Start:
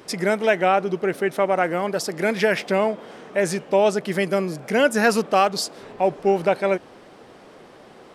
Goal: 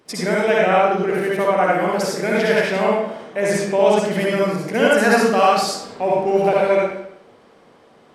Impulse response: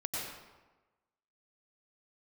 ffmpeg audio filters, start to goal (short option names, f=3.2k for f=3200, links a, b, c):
-filter_complex "[0:a]agate=range=-8dB:threshold=-40dB:ratio=16:detection=peak[a];[1:a]atrim=start_sample=2205,asetrate=70560,aresample=44100[b];[a][b]afir=irnorm=-1:irlink=0,volume=4dB"